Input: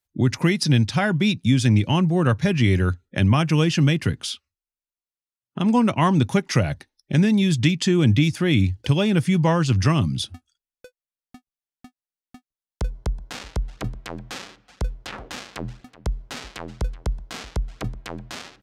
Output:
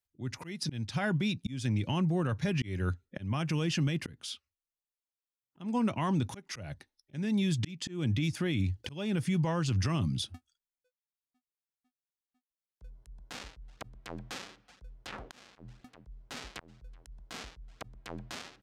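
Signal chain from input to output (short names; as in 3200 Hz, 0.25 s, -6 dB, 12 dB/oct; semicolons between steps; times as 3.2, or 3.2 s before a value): auto swell 0.345 s; limiter -15 dBFS, peak gain reduction 8 dB; gain -7 dB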